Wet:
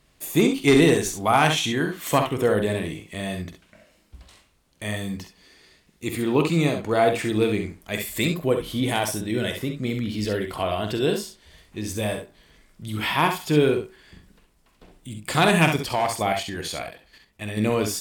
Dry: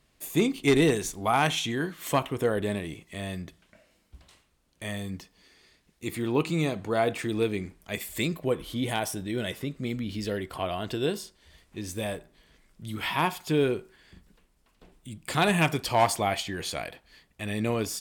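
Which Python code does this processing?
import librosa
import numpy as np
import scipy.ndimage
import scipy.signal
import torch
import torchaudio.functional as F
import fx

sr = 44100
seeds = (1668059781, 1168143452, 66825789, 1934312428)

p1 = fx.level_steps(x, sr, step_db=9, at=(15.76, 17.57))
p2 = p1 + fx.echo_multitap(p1, sr, ms=(47, 66), db=(-10.0, -7.5), dry=0)
y = p2 * librosa.db_to_amplitude(4.5)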